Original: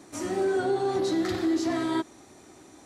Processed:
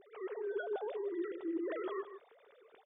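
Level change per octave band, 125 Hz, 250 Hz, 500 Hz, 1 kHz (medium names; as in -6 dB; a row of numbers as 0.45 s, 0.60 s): under -35 dB, -14.5 dB, -10.5 dB, -15.0 dB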